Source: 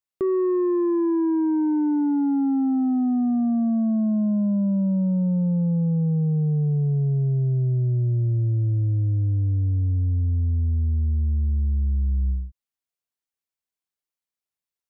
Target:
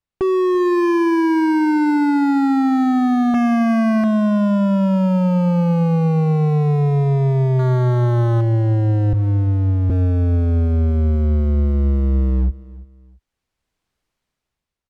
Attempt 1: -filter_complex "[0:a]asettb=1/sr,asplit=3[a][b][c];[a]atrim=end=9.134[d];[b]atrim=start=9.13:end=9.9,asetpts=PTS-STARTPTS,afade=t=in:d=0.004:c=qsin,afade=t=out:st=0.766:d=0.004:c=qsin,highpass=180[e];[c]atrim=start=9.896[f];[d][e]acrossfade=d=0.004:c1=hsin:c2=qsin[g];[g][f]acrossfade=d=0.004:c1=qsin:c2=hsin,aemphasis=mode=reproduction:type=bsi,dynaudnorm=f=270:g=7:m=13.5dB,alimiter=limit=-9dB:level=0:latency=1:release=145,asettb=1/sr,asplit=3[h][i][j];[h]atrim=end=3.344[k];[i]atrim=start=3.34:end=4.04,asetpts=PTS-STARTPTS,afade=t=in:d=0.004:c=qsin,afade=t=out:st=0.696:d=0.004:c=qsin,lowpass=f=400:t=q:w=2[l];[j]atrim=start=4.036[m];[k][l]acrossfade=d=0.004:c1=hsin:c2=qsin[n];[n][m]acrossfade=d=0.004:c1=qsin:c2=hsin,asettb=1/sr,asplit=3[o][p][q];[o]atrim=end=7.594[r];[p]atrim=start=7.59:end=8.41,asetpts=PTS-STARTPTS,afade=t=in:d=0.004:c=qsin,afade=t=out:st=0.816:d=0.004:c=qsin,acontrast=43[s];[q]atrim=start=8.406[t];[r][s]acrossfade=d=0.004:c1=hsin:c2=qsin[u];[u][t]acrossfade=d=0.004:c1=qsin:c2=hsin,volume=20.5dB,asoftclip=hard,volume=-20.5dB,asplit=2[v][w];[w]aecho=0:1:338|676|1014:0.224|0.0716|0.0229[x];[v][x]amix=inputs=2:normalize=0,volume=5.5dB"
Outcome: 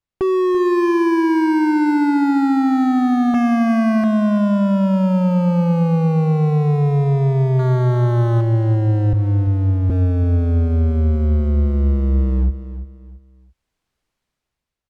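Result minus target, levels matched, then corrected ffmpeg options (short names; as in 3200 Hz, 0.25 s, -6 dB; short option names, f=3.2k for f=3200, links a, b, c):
echo-to-direct +7.5 dB
-filter_complex "[0:a]asettb=1/sr,asplit=3[a][b][c];[a]atrim=end=9.134[d];[b]atrim=start=9.13:end=9.9,asetpts=PTS-STARTPTS,afade=t=in:d=0.004:c=qsin,afade=t=out:st=0.766:d=0.004:c=qsin,highpass=180[e];[c]atrim=start=9.896[f];[d][e]acrossfade=d=0.004:c1=hsin:c2=qsin[g];[g][f]acrossfade=d=0.004:c1=qsin:c2=hsin,aemphasis=mode=reproduction:type=bsi,dynaudnorm=f=270:g=7:m=13.5dB,alimiter=limit=-9dB:level=0:latency=1:release=145,asettb=1/sr,asplit=3[h][i][j];[h]atrim=end=3.344[k];[i]atrim=start=3.34:end=4.04,asetpts=PTS-STARTPTS,afade=t=in:d=0.004:c=qsin,afade=t=out:st=0.696:d=0.004:c=qsin,lowpass=f=400:t=q:w=2[l];[j]atrim=start=4.036[m];[k][l]acrossfade=d=0.004:c1=hsin:c2=qsin[n];[n][m]acrossfade=d=0.004:c1=qsin:c2=hsin,asettb=1/sr,asplit=3[o][p][q];[o]atrim=end=7.594[r];[p]atrim=start=7.59:end=8.41,asetpts=PTS-STARTPTS,afade=t=in:d=0.004:c=qsin,afade=t=out:st=0.816:d=0.004:c=qsin,acontrast=43[s];[q]atrim=start=8.406[t];[r][s]acrossfade=d=0.004:c1=hsin:c2=qsin[u];[u][t]acrossfade=d=0.004:c1=qsin:c2=hsin,volume=20.5dB,asoftclip=hard,volume=-20.5dB,asplit=2[v][w];[w]aecho=0:1:338|676:0.0944|0.0302[x];[v][x]amix=inputs=2:normalize=0,volume=5.5dB"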